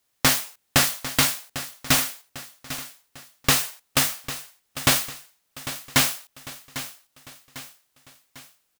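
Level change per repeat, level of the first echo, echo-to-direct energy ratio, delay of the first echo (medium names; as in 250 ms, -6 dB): -6.5 dB, -13.5 dB, -12.5 dB, 799 ms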